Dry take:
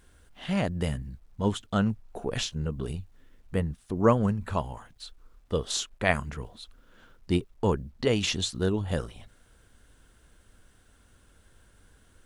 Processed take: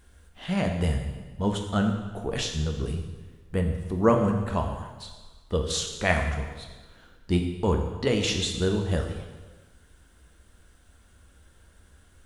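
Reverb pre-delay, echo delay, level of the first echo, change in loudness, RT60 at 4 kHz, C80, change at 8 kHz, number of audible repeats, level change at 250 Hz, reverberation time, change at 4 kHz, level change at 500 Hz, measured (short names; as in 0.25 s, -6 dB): 4 ms, none, none, +2.0 dB, 1.2 s, 7.5 dB, +2.0 dB, none, +2.0 dB, 1.3 s, +2.0 dB, +2.0 dB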